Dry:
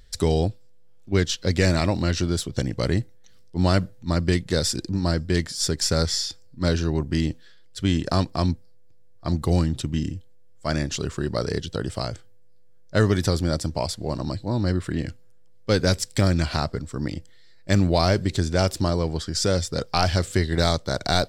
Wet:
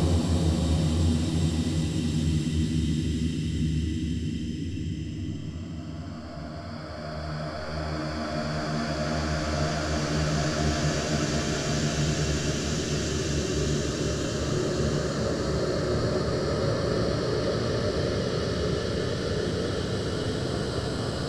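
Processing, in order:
extreme stretch with random phases 10×, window 1.00 s, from 0:09.72

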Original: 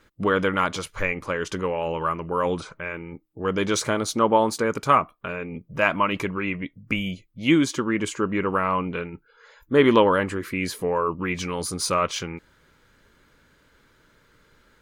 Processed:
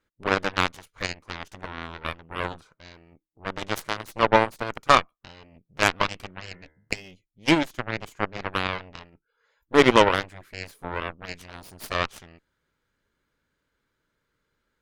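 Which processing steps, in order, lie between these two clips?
harmonic generator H 3 −28 dB, 4 −20 dB, 7 −17 dB, 8 −34 dB, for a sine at −3.5 dBFS
0:06.28–0:06.95: hum removal 77.04 Hz, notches 28
level +2 dB

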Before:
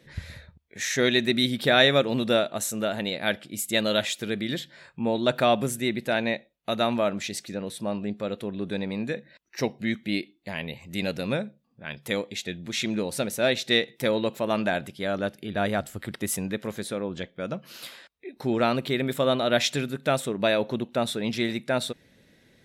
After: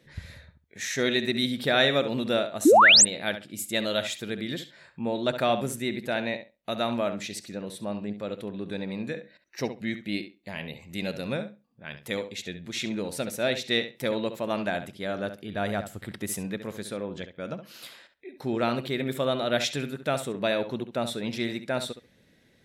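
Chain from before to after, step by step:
feedback echo with a low-pass in the loop 68 ms, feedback 16%, low-pass 4,800 Hz, level −10.5 dB
sound drawn into the spectrogram rise, 0:02.65–0:03.05, 260–9,300 Hz −11 dBFS
level −3.5 dB

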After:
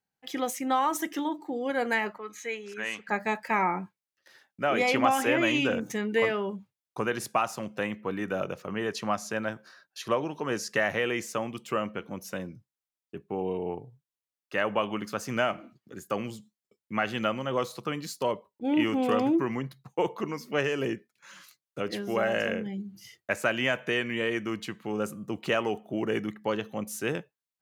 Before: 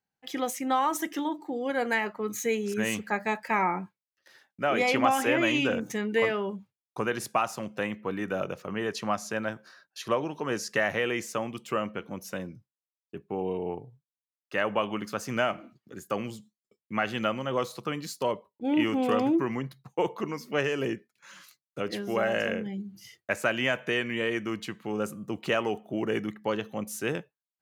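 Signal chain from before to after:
0:02.18–0:03.09: resonant band-pass 1,700 Hz, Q 0.7

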